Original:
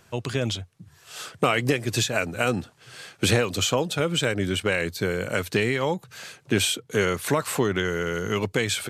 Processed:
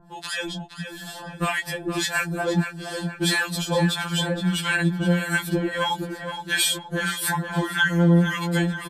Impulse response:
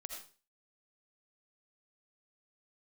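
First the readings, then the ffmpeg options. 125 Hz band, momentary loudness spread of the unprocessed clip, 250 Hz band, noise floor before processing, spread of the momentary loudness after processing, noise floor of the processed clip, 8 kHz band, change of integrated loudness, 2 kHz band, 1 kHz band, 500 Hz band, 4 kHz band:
+3.5 dB, 10 LU, +4.0 dB, -58 dBFS, 11 LU, -42 dBFS, +0.5 dB, +1.0 dB, +3.5 dB, +1.5 dB, -4.0 dB, +1.0 dB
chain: -filter_complex "[0:a]aecho=1:1:7:0.64,dynaudnorm=f=120:g=5:m=2.51,acrossover=split=990[s0][s1];[s0]aeval=exprs='val(0)*(1-1/2+1/2*cos(2*PI*1.6*n/s))':c=same[s2];[s1]aeval=exprs='val(0)*(1-1/2-1/2*cos(2*PI*1.6*n/s))':c=same[s3];[s2][s3]amix=inputs=2:normalize=0,asplit=2[s4][s5];[s5]acompressor=threshold=0.0178:ratio=6,volume=1.41[s6];[s4][s6]amix=inputs=2:normalize=0,equalizer=f=630:t=o:w=0.33:g=-4,equalizer=f=2500:t=o:w=0.33:g=-11,equalizer=f=6300:t=o:w=0.33:g=-8,asplit=2[s7][s8];[s8]adelay=470,lowpass=f=4400:p=1,volume=0.398,asplit=2[s9][s10];[s10]adelay=470,lowpass=f=4400:p=1,volume=0.44,asplit=2[s11][s12];[s12]adelay=470,lowpass=f=4400:p=1,volume=0.44,asplit=2[s13][s14];[s14]adelay=470,lowpass=f=4400:p=1,volume=0.44,asplit=2[s15][s16];[s16]adelay=470,lowpass=f=4400:p=1,volume=0.44[s17];[s9][s11][s13][s15][s17]amix=inputs=5:normalize=0[s18];[s7][s18]amix=inputs=2:normalize=0,afftfilt=real='re*2.83*eq(mod(b,8),0)':imag='im*2.83*eq(mod(b,8),0)':win_size=2048:overlap=0.75,volume=1.26"

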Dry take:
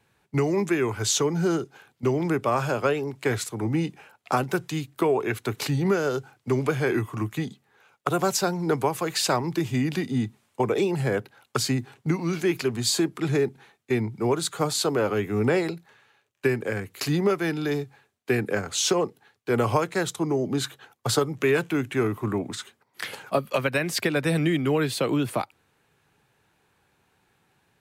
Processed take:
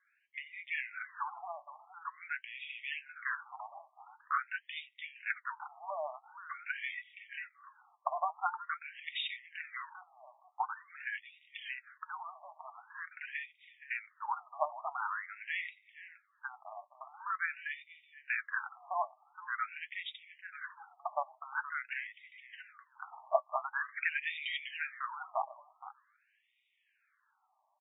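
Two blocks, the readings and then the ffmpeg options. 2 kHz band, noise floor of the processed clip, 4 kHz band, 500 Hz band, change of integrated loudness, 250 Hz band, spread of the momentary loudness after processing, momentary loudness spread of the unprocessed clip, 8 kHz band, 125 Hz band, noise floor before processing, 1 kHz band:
-5.5 dB, -76 dBFS, -15.0 dB, -20.5 dB, -14.0 dB, under -40 dB, 16 LU, 8 LU, under -40 dB, under -40 dB, -70 dBFS, -7.5 dB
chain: -filter_complex "[0:a]flanger=delay=5.4:depth=2.5:regen=50:speed=1.9:shape=sinusoidal,asplit=2[s0][s1];[s1]adelay=469,lowpass=f=1900:p=1,volume=0.251,asplit=2[s2][s3];[s3]adelay=469,lowpass=f=1900:p=1,volume=0.16[s4];[s0][s2][s4]amix=inputs=3:normalize=0,afftfilt=real='re*between(b*sr/1024,830*pow(2700/830,0.5+0.5*sin(2*PI*0.46*pts/sr))/1.41,830*pow(2700/830,0.5+0.5*sin(2*PI*0.46*pts/sr))*1.41)':imag='im*between(b*sr/1024,830*pow(2700/830,0.5+0.5*sin(2*PI*0.46*pts/sr))/1.41,830*pow(2700/830,0.5+0.5*sin(2*PI*0.46*pts/sr))*1.41)':win_size=1024:overlap=0.75,volume=1.19"

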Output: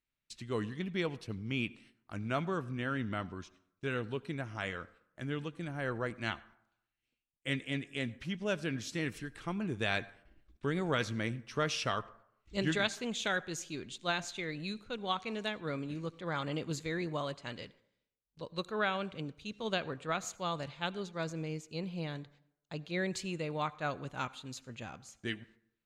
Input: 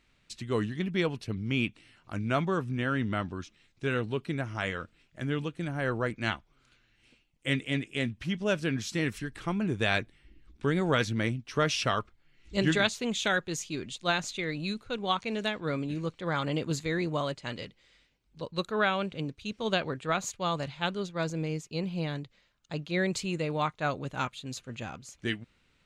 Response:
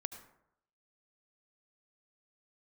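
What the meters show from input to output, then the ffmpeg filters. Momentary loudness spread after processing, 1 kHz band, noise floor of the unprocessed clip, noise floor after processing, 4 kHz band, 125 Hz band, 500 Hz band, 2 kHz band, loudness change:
11 LU, -5.5 dB, -69 dBFS, under -85 dBFS, -5.5 dB, -6.5 dB, -5.5 dB, -5.5 dB, -5.5 dB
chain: -filter_complex "[0:a]agate=range=0.126:threshold=0.002:ratio=16:detection=peak,asplit=2[s0][s1];[1:a]atrim=start_sample=2205,lowshelf=f=230:g=-7.5[s2];[s1][s2]afir=irnorm=-1:irlink=0,volume=0.473[s3];[s0][s3]amix=inputs=2:normalize=0,volume=0.398"

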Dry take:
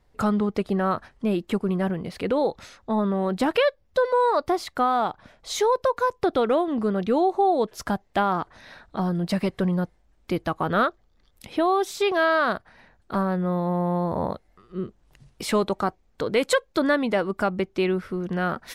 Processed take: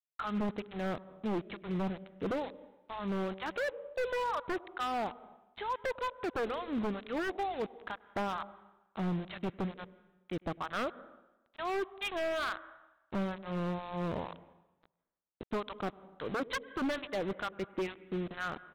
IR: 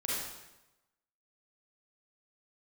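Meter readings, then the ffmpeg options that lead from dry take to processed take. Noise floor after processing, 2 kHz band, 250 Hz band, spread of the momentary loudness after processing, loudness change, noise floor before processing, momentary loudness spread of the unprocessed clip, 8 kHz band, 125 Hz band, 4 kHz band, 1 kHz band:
-77 dBFS, -10.0 dB, -12.0 dB, 9 LU, -12.5 dB, -63 dBFS, 9 LU, -17.0 dB, -11.5 dB, -10.5 dB, -13.0 dB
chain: -filter_complex "[0:a]acrossover=split=890[s0][s1];[s0]aeval=exprs='val(0)*(1-1/2+1/2*cos(2*PI*2.2*n/s))':c=same[s2];[s1]aeval=exprs='val(0)*(1-1/2-1/2*cos(2*PI*2.2*n/s))':c=same[s3];[s2][s3]amix=inputs=2:normalize=0,aeval=exprs='val(0)+0.002*(sin(2*PI*50*n/s)+sin(2*PI*2*50*n/s)/2+sin(2*PI*3*50*n/s)/3+sin(2*PI*4*50*n/s)/4+sin(2*PI*5*50*n/s)/5)':c=same,aresample=8000,aeval=exprs='val(0)*gte(abs(val(0)),0.015)':c=same,aresample=44100,agate=range=0.0224:threshold=0.00501:ratio=3:detection=peak,asplit=2[s4][s5];[1:a]atrim=start_sample=2205,lowpass=3000,adelay=101[s6];[s5][s6]afir=irnorm=-1:irlink=0,volume=0.0708[s7];[s4][s7]amix=inputs=2:normalize=0,aeval=exprs='0.0794*(abs(mod(val(0)/0.0794+3,4)-2)-1)':c=same,volume=0.531"

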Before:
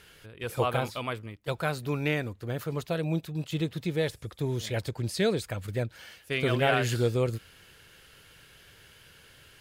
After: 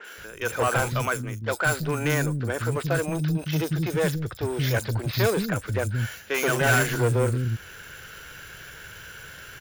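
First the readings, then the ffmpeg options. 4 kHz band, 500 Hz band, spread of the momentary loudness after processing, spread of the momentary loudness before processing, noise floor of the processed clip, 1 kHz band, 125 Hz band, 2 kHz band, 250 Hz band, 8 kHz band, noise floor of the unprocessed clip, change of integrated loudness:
+2.5 dB, +3.5 dB, 18 LU, 10 LU, -44 dBFS, +5.0 dB, +6.0 dB, +8.5 dB, +3.5 dB, +10.5 dB, -56 dBFS, +5.0 dB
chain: -filter_complex "[0:a]equalizer=f=1500:t=o:w=0.25:g=10,acompressor=mode=upward:threshold=0.00562:ratio=2.5,adynamicequalizer=threshold=0.00501:dfrequency=4900:dqfactor=0.8:tfrequency=4900:tqfactor=0.8:attack=5:release=100:ratio=0.375:range=3:mode=cutabove:tftype=bell,aresample=16000,asoftclip=type=tanh:threshold=0.0501,aresample=44100,acrusher=samples=5:mix=1:aa=0.000001,acrossover=split=270|4500[s0][s1][s2];[s2]adelay=40[s3];[s0]adelay=180[s4];[s4][s1][s3]amix=inputs=3:normalize=0,volume=2.82"

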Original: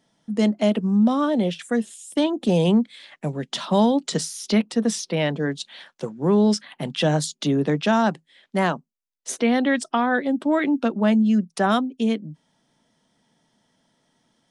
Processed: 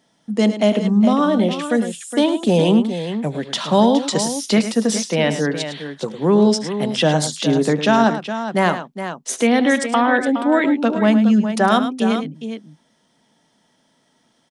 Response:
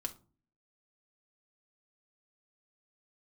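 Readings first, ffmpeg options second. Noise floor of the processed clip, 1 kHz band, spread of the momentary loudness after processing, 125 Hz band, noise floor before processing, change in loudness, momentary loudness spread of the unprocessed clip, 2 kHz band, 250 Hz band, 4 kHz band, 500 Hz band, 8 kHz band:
-63 dBFS, +5.5 dB, 10 LU, +3.0 dB, -75 dBFS, +4.5 dB, 12 LU, +5.5 dB, +4.0 dB, +6.0 dB, +5.5 dB, +6.0 dB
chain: -filter_complex "[0:a]lowshelf=f=110:g=-9,asplit=2[s0][s1];[s1]aecho=0:1:75|106|415:0.106|0.282|0.316[s2];[s0][s2]amix=inputs=2:normalize=0,volume=1.78"

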